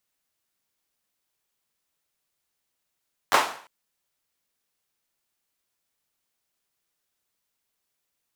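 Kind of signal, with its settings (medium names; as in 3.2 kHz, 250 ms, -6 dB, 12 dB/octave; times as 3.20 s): hand clap length 0.35 s, bursts 3, apart 10 ms, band 940 Hz, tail 0.49 s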